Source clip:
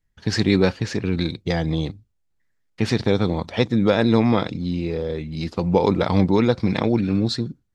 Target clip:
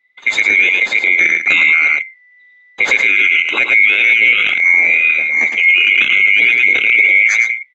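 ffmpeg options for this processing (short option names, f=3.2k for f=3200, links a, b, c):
-filter_complex "[0:a]afftfilt=real='real(if(lt(b,920),b+92*(1-2*mod(floor(b/92),2)),b),0)':imag='imag(if(lt(b,920),b+92*(1-2*mod(floor(b/92),2)),b),0)':win_size=2048:overlap=0.75,acrossover=split=230 4500:gain=0.158 1 0.0631[a][b][c];[a][b][c]amix=inputs=3:normalize=0,dynaudnorm=f=370:g=5:m=15dB,asplit=2[d][e];[e]aecho=0:1:109:0.447[f];[d][f]amix=inputs=2:normalize=0,alimiter=level_in=11dB:limit=-1dB:release=50:level=0:latency=1,volume=-1dB"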